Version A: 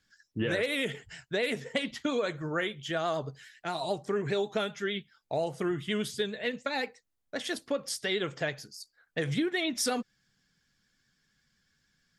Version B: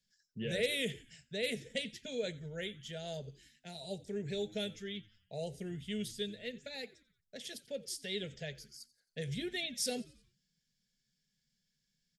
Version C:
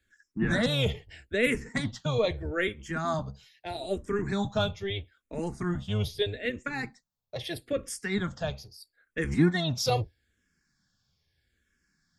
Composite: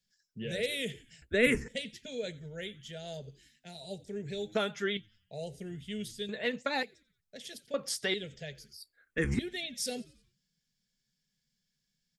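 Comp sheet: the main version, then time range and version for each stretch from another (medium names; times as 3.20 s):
B
1.22–1.68 s: from C
4.55–4.97 s: from A
6.29–6.83 s: from A
7.74–8.14 s: from A
8.73–9.39 s: from C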